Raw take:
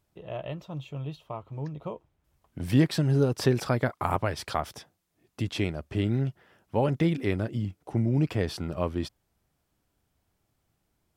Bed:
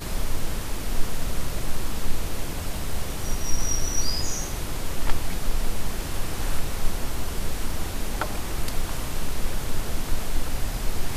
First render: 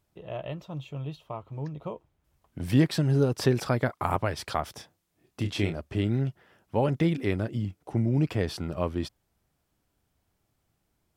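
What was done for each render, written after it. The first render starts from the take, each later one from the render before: 4.76–5.81 s: doubling 30 ms -7 dB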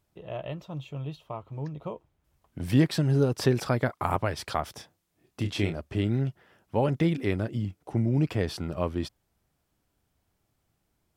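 no audible change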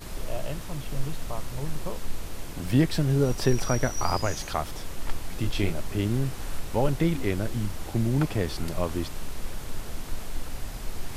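add bed -7.5 dB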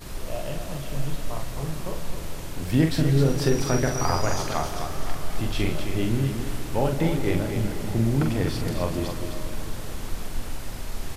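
on a send: loudspeakers at several distances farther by 15 m -5 dB, 89 m -7 dB; on the sum: algorithmic reverb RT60 4.6 s, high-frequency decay 0.75×, pre-delay 100 ms, DRR 8 dB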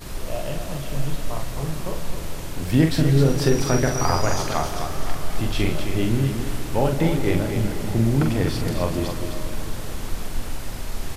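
trim +3 dB

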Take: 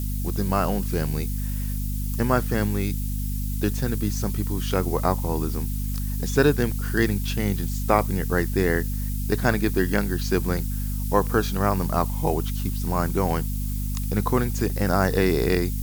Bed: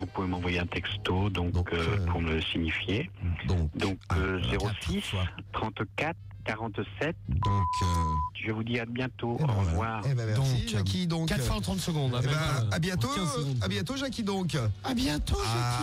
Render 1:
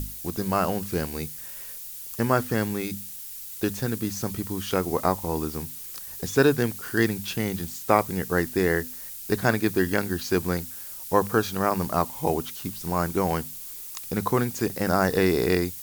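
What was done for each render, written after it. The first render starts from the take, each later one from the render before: hum notches 50/100/150/200/250 Hz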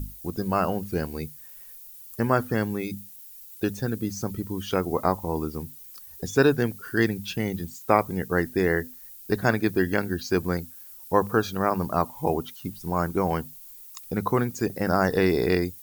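noise reduction 12 dB, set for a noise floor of -39 dBFS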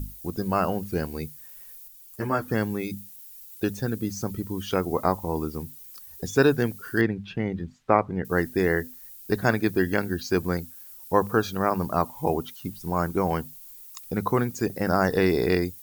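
1.88–2.48 s: three-phase chorus; 7.01–8.25 s: low-pass 2.2 kHz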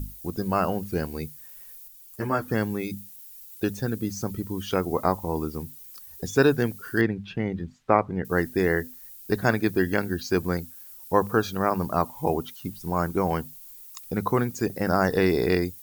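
no audible change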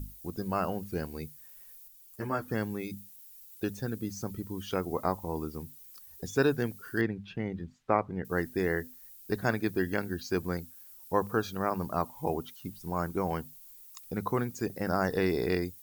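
trim -6.5 dB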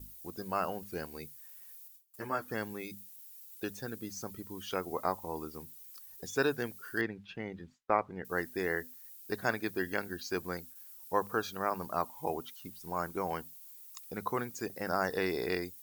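bass shelf 310 Hz -12 dB; gate with hold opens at -41 dBFS

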